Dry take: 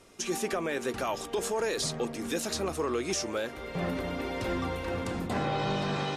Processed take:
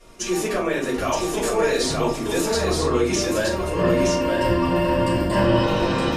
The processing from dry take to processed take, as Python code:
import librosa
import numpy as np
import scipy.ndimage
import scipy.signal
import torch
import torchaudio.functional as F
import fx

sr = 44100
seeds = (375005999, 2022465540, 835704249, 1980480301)

y = fx.ripple_eq(x, sr, per_octave=1.3, db=12, at=(3.34, 5.63))
y = y + 10.0 ** (-3.5 / 20.0) * np.pad(y, (int(920 * sr / 1000.0), 0))[:len(y)]
y = fx.room_shoebox(y, sr, seeds[0], volume_m3=190.0, walls='furnished', distance_m=5.7)
y = F.gain(torch.from_numpy(y), -3.0).numpy()